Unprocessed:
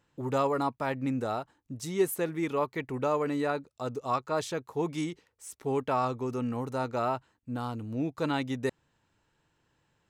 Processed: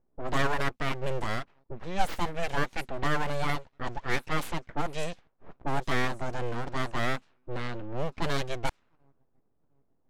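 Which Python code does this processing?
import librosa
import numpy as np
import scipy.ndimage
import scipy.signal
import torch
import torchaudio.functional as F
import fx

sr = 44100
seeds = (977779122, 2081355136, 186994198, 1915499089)

y = fx.echo_wet_highpass(x, sr, ms=701, feedback_pct=55, hz=3000.0, wet_db=-20)
y = np.abs(y)
y = fx.env_lowpass(y, sr, base_hz=500.0, full_db=-27.0)
y = y * librosa.db_to_amplitude(3.5)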